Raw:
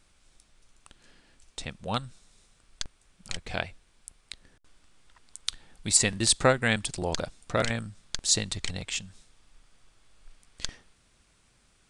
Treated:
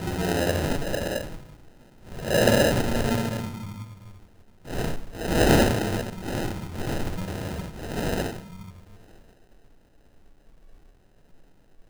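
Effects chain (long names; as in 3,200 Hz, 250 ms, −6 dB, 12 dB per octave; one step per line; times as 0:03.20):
mains-hum notches 50/100/150/200/250/300/350/400/450/500 Hz
extreme stretch with random phases 4.1×, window 0.10 s, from 0:06.97
decimation without filtering 39×
level +5 dB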